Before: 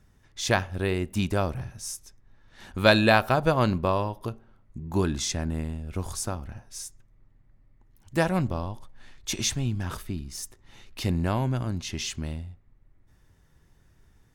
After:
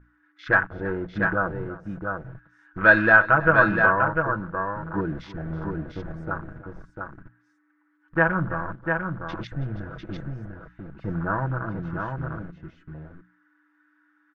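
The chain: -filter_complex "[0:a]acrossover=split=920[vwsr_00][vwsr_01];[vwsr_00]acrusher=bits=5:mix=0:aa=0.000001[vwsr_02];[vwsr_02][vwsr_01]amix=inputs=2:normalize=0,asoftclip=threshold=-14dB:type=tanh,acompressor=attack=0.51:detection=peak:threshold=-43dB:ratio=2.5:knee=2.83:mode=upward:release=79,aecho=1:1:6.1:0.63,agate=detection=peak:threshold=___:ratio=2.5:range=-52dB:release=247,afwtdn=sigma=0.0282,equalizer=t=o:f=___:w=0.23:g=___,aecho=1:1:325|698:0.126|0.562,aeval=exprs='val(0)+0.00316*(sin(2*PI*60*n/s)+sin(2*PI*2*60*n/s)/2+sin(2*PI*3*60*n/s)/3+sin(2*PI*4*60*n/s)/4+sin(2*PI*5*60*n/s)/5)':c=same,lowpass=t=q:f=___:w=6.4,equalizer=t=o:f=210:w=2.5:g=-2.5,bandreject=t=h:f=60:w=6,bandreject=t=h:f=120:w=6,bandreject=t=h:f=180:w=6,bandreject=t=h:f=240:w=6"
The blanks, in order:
-58dB, 730, -4.5, 1500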